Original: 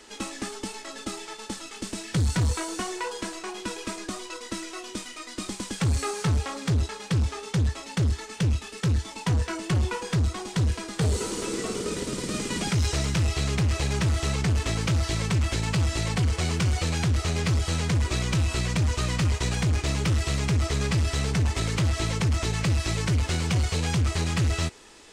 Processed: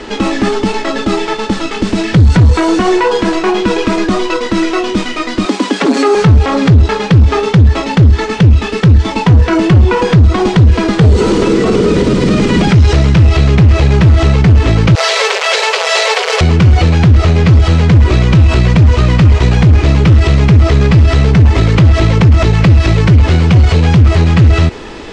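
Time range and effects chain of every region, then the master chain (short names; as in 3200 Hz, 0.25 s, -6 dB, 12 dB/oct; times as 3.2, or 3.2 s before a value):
5.45–6.15 steep high-pass 210 Hz 72 dB/oct + comb 7.1 ms, depth 45%
14.95–16.41 high shelf 2400 Hz +8.5 dB + requantised 6-bit, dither none + brick-wall FIR high-pass 400 Hz
whole clip: LPF 3700 Hz 12 dB/oct; tilt shelf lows +4 dB, about 650 Hz; maximiser +25.5 dB; gain -1 dB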